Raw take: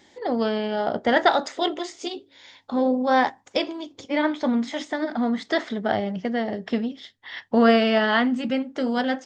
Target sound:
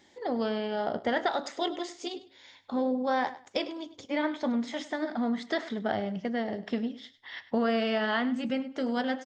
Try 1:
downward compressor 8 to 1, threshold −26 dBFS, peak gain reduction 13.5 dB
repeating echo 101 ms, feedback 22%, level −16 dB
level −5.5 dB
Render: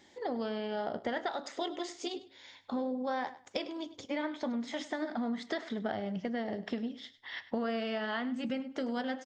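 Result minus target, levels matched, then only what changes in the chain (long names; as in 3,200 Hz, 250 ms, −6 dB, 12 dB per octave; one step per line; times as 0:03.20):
downward compressor: peak gain reduction +7 dB
change: downward compressor 8 to 1, threshold −18 dBFS, peak gain reduction 6.5 dB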